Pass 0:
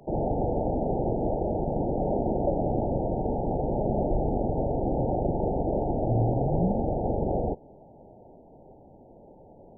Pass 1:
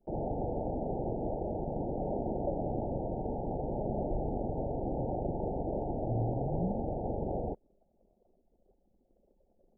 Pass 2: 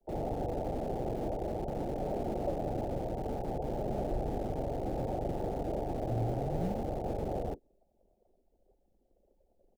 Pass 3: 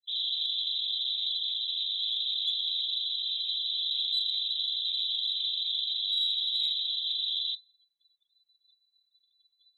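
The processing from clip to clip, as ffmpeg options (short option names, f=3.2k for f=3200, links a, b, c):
-af "anlmdn=0.251,volume=-7.5dB"
-filter_complex "[0:a]acrossover=split=170|250|330[a][b][c][d];[b]acrusher=bits=5:dc=4:mix=0:aa=0.000001[e];[c]asplit=2[f][g];[g]adelay=41,volume=-6dB[h];[f][h]amix=inputs=2:normalize=0[i];[a][e][i][d]amix=inputs=4:normalize=0"
-af "lowpass=f=3.4k:t=q:w=0.5098,lowpass=f=3.4k:t=q:w=0.6013,lowpass=f=3.4k:t=q:w=0.9,lowpass=f=3.4k:t=q:w=2.563,afreqshift=-4000,aexciter=amount=2.3:drive=7.5:freq=2.1k,afftdn=nr=30:nf=-47,volume=-5.5dB"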